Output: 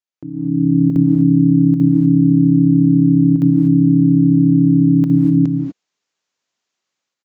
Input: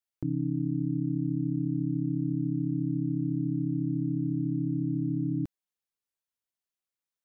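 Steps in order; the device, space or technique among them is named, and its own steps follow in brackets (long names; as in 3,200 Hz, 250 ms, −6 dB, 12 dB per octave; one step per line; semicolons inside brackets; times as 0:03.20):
call with lost packets (high-pass filter 170 Hz 12 dB per octave; downsampling to 16,000 Hz; automatic gain control gain up to 16 dB; dropped packets of 60 ms random)
reverb whose tail is shaped and stops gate 270 ms rising, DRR 3 dB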